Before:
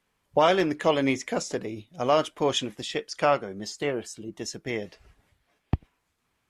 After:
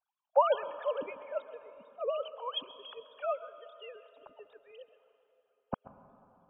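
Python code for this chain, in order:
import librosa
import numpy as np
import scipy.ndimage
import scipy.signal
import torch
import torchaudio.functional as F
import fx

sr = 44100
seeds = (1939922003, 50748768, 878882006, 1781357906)

p1 = fx.sine_speech(x, sr)
p2 = fx.hpss(p1, sr, part='harmonic', gain_db=-16)
p3 = fx.dynamic_eq(p2, sr, hz=220.0, q=0.88, threshold_db=-47.0, ratio=4.0, max_db=7)
p4 = fx.fixed_phaser(p3, sr, hz=820.0, stages=4)
p5 = p4 + fx.echo_single(p4, sr, ms=133, db=-18.0, dry=0)
y = fx.rev_plate(p5, sr, seeds[0], rt60_s=3.6, hf_ratio=0.65, predelay_ms=110, drr_db=14.5)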